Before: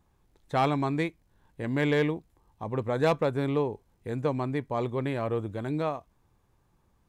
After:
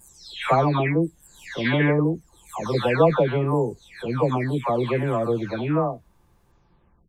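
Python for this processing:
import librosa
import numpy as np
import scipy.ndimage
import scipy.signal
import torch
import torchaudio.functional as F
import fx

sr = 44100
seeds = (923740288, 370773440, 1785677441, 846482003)

y = fx.spec_delay(x, sr, highs='early', ms=569)
y = y * 10.0 ** (8.5 / 20.0)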